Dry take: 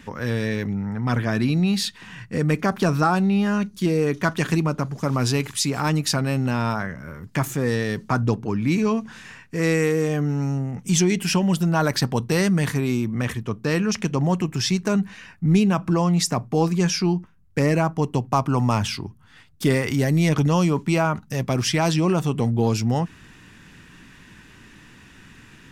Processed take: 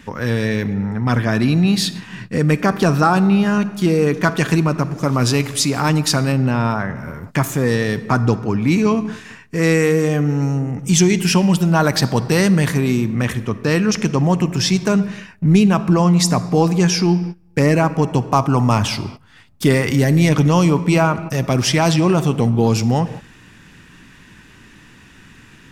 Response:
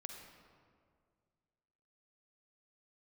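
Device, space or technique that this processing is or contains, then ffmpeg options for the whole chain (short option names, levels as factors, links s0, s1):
keyed gated reverb: -filter_complex "[0:a]asplit=3[s0][s1][s2];[1:a]atrim=start_sample=2205[s3];[s1][s3]afir=irnorm=-1:irlink=0[s4];[s2]apad=whole_len=1134007[s5];[s4][s5]sidechaingate=range=0.0708:threshold=0.0112:ratio=16:detection=peak,volume=0.708[s6];[s0][s6]amix=inputs=2:normalize=0,asettb=1/sr,asplit=3[s7][s8][s9];[s7]atrim=end=6.324[s10];[s8]atrim=start=6.32:end=6.96,asetpts=PTS-STARTPTS,afade=t=in:d=0.004:c=qsin,afade=t=out:st=0.636:d=0.004:c=qsin,highshelf=f=3500:g=-8.5[s11];[s9]atrim=start=6.956[s12];[s10][s11]acrossfade=d=0.004:c1=hsin:c2=qsin[s13];[s13][s12]acrossfade=d=0.004:c1=qsin:c2=hsin,volume=1.33"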